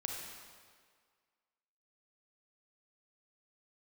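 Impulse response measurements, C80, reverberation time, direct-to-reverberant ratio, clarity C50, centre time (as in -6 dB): 3.0 dB, 1.8 s, 0.0 dB, 1.0 dB, 83 ms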